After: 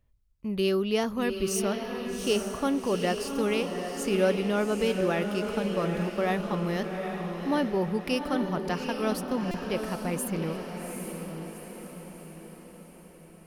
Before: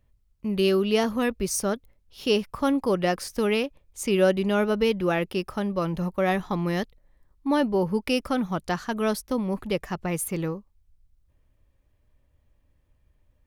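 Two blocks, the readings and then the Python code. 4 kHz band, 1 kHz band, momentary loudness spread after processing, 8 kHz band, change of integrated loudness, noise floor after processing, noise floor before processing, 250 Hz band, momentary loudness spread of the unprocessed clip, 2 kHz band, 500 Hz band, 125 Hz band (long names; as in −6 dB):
−2.5 dB, −2.5 dB, 14 LU, −2.5 dB, −3.0 dB, −51 dBFS, −67 dBFS, −2.5 dB, 8 LU, −2.5 dB, −2.5 dB, −2.5 dB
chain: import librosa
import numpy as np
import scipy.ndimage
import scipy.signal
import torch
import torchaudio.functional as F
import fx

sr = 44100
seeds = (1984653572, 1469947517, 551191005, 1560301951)

y = fx.echo_diffused(x, sr, ms=787, feedback_pct=53, wet_db=-5.5)
y = fx.buffer_glitch(y, sr, at_s=(9.51,), block=128, repeats=10)
y = y * 10.0 ** (-4.0 / 20.0)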